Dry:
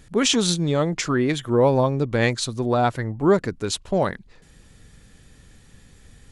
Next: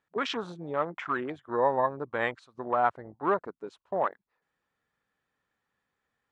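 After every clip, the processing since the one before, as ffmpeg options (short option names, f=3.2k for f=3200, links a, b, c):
-af "bandpass=f=1.1k:t=q:w=1.5:csg=0,afwtdn=0.0178"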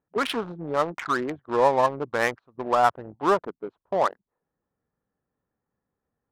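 -af "adynamicsmooth=sensitivity=6:basefreq=730,volume=5.5dB"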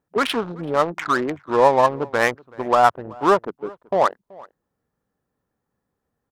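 -filter_complex "[0:a]asplit=2[a][b];[b]adelay=379,volume=-23dB,highshelf=f=4k:g=-8.53[c];[a][c]amix=inputs=2:normalize=0,volume=5dB"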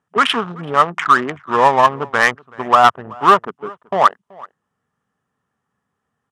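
-af "highpass=100,equalizer=f=320:t=q:w=4:g=-9,equalizer=f=530:t=q:w=4:g=-7,equalizer=f=1.2k:t=q:w=4:g=7,equalizer=f=1.8k:t=q:w=4:g=4,equalizer=f=3k:t=q:w=4:g=6,equalizer=f=4.3k:t=q:w=4:g=-6,lowpass=f=9.9k:w=0.5412,lowpass=f=9.9k:w=1.3066,asoftclip=type=hard:threshold=-6dB,volume=4dB"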